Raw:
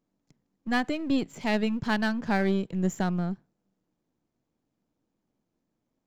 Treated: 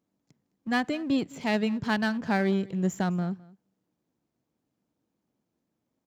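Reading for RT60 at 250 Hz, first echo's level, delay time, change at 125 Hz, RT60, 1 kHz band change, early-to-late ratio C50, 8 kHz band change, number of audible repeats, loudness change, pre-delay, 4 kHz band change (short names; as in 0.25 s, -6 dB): none, -22.5 dB, 0.211 s, 0.0 dB, none, 0.0 dB, none, n/a, 1, 0.0 dB, none, 0.0 dB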